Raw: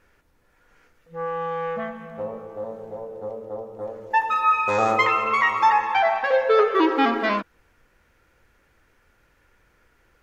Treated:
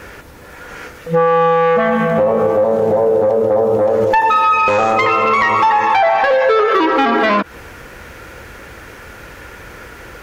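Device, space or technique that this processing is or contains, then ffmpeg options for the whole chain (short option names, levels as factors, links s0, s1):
mastering chain: -filter_complex "[0:a]highpass=47,equalizer=f=490:t=o:w=0.77:g=2,acrossover=split=630|3900[s0][s1][s2];[s0]acompressor=threshold=0.0251:ratio=4[s3];[s1]acompressor=threshold=0.0355:ratio=4[s4];[s2]acompressor=threshold=0.00224:ratio=4[s5];[s3][s4][s5]amix=inputs=3:normalize=0,acompressor=threshold=0.0224:ratio=2,asoftclip=type=tanh:threshold=0.0596,asoftclip=type=hard:threshold=0.0447,alimiter=level_in=47.3:limit=0.891:release=50:level=0:latency=1,volume=0.501"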